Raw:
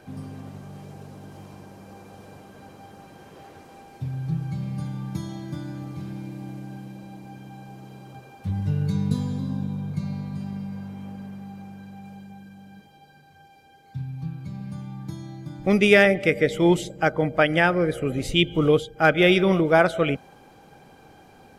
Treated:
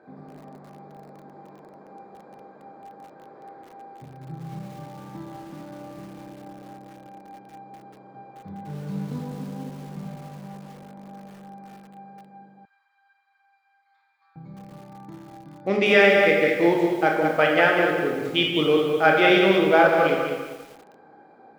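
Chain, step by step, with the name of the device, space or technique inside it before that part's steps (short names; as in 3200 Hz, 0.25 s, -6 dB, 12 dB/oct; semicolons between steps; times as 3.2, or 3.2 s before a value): Wiener smoothing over 15 samples; supermarket ceiling speaker (BPF 290–5100 Hz; reverb RT60 1.1 s, pre-delay 21 ms, DRR 0.5 dB); 12.65–14.36 steep high-pass 1100 Hz 36 dB/oct; lo-fi delay 0.197 s, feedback 35%, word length 7-bit, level -6.5 dB; gain -1 dB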